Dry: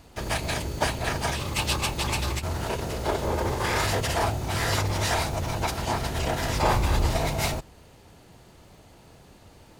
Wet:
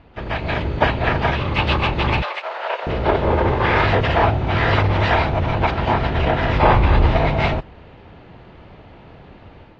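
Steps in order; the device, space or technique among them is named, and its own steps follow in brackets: 2.22–2.87 Chebyshev high-pass 540 Hz, order 4; action camera in a waterproof case (LPF 3000 Hz 24 dB/oct; AGC gain up to 6.5 dB; gain +3 dB; AAC 48 kbps 32000 Hz)

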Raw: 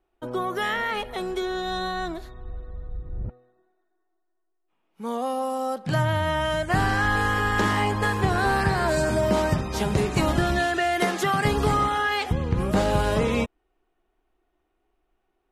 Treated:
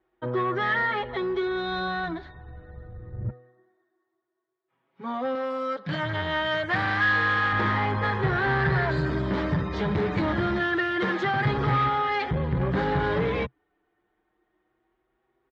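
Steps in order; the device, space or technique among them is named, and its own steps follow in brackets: barber-pole flanger into a guitar amplifier (endless flanger 6 ms +0.27 Hz; soft clip -26.5 dBFS, distortion -10 dB; speaker cabinet 80–3600 Hz, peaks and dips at 130 Hz +7 dB, 230 Hz -3 dB, 690 Hz -4 dB, 1800 Hz +5 dB, 2700 Hz -8 dB); 5.35–7.53 tilt +2 dB/oct; gain +6 dB

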